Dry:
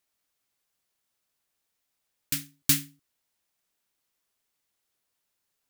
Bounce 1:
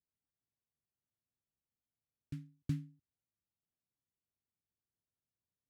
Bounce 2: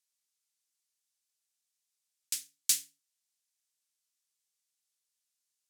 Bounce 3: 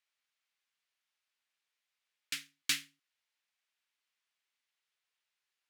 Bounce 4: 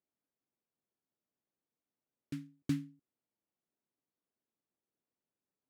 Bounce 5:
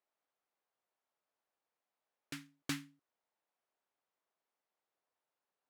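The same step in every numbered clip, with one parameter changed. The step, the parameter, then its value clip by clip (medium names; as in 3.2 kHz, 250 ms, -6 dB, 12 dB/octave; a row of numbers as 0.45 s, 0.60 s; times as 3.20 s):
band-pass filter, frequency: 100 Hz, 7.2 kHz, 2.4 kHz, 260 Hz, 710 Hz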